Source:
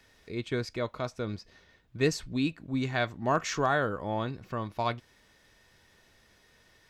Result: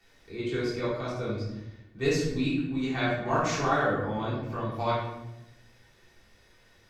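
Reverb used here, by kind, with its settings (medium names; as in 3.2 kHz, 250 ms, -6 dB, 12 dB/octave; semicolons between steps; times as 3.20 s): simulated room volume 330 m³, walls mixed, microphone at 3.6 m; trim -8.5 dB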